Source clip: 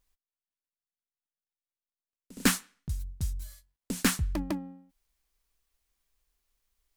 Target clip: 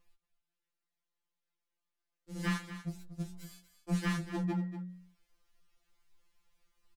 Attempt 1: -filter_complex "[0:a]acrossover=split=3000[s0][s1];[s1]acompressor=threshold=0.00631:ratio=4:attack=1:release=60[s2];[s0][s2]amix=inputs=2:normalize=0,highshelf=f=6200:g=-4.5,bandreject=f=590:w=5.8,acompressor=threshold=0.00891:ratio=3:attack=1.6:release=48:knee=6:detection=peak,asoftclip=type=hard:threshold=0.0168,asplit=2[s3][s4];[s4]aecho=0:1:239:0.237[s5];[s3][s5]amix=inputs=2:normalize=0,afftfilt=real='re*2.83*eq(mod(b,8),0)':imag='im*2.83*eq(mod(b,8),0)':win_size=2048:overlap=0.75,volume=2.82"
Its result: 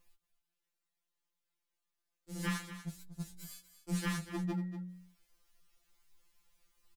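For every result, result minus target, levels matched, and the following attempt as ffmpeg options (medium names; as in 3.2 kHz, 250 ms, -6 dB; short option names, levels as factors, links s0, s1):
8 kHz band +6.5 dB; compression: peak gain reduction +4.5 dB
-filter_complex "[0:a]acrossover=split=3000[s0][s1];[s1]acompressor=threshold=0.00631:ratio=4:attack=1:release=60[s2];[s0][s2]amix=inputs=2:normalize=0,highshelf=f=6200:g=-14.5,bandreject=f=590:w=5.8,acompressor=threshold=0.00891:ratio=3:attack=1.6:release=48:knee=6:detection=peak,asoftclip=type=hard:threshold=0.0168,asplit=2[s3][s4];[s4]aecho=0:1:239:0.237[s5];[s3][s5]amix=inputs=2:normalize=0,afftfilt=real='re*2.83*eq(mod(b,8),0)':imag='im*2.83*eq(mod(b,8),0)':win_size=2048:overlap=0.75,volume=2.82"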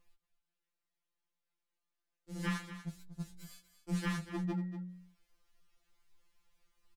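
compression: peak gain reduction +4.5 dB
-filter_complex "[0:a]acrossover=split=3000[s0][s1];[s1]acompressor=threshold=0.00631:ratio=4:attack=1:release=60[s2];[s0][s2]amix=inputs=2:normalize=0,highshelf=f=6200:g=-14.5,bandreject=f=590:w=5.8,acompressor=threshold=0.0188:ratio=3:attack=1.6:release=48:knee=6:detection=peak,asoftclip=type=hard:threshold=0.0168,asplit=2[s3][s4];[s4]aecho=0:1:239:0.237[s5];[s3][s5]amix=inputs=2:normalize=0,afftfilt=real='re*2.83*eq(mod(b,8),0)':imag='im*2.83*eq(mod(b,8),0)':win_size=2048:overlap=0.75,volume=2.82"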